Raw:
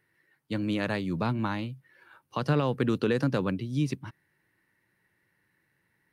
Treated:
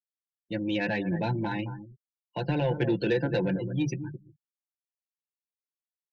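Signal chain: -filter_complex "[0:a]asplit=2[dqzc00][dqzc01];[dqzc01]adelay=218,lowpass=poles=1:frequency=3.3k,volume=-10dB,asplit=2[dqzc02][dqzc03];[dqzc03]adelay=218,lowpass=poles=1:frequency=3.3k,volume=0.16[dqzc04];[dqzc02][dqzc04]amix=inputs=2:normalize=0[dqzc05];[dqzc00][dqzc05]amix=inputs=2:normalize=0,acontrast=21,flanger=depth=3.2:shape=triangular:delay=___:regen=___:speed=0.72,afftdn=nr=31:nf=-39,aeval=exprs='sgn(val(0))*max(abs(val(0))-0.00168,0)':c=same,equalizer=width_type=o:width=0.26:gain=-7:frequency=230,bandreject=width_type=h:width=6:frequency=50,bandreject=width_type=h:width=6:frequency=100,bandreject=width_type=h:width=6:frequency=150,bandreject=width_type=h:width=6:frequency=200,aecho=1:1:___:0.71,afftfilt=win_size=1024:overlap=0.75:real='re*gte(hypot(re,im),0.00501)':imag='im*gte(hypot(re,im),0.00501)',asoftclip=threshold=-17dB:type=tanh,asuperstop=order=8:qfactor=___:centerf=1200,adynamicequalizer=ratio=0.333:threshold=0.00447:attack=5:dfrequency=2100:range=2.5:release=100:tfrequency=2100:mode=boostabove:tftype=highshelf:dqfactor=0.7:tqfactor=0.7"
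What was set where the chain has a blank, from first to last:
8.6, -61, 5.8, 2.5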